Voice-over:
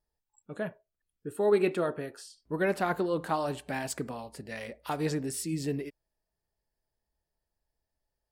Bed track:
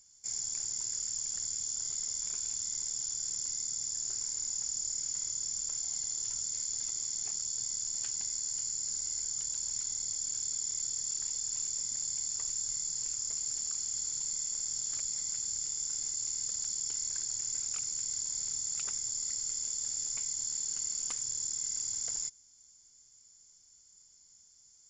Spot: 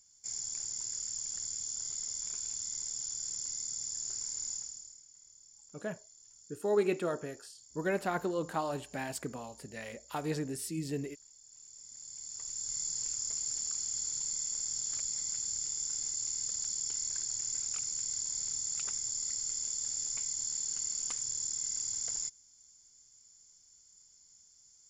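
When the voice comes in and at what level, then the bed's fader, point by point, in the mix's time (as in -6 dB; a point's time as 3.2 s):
5.25 s, -4.0 dB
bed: 4.53 s -2.5 dB
5.06 s -22.5 dB
11.42 s -22.5 dB
12.81 s -0.5 dB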